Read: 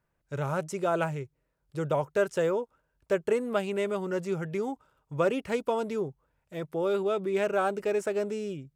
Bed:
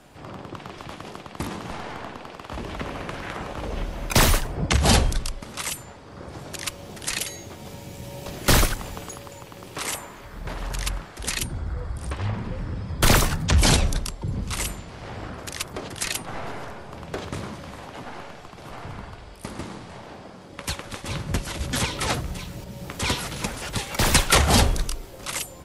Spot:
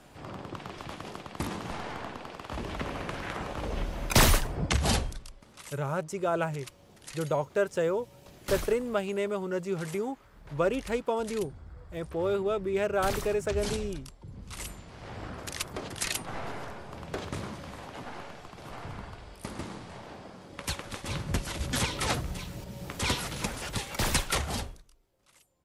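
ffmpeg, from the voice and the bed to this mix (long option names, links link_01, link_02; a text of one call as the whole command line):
ffmpeg -i stem1.wav -i stem2.wav -filter_complex "[0:a]adelay=5400,volume=-1dB[link_01];[1:a]volume=10dB,afade=type=out:start_time=4.46:duration=0.74:silence=0.199526,afade=type=in:start_time=14.36:duration=1.02:silence=0.223872,afade=type=out:start_time=23.61:duration=1.21:silence=0.0375837[link_02];[link_01][link_02]amix=inputs=2:normalize=0" out.wav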